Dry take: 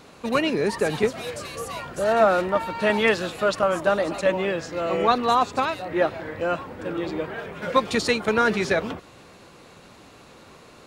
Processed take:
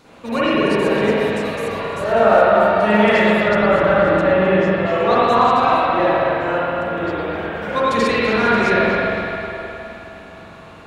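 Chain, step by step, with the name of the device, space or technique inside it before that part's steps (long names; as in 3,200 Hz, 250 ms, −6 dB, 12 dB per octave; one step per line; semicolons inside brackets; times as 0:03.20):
dub delay into a spring reverb (feedback echo with a low-pass in the loop 259 ms, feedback 63%, low-pass 4,400 Hz, level −9.5 dB; spring reverb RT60 2.8 s, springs 43/52 ms, chirp 75 ms, DRR −9.5 dB)
0:03.48–0:04.86: bass and treble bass +6 dB, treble −8 dB
level −3 dB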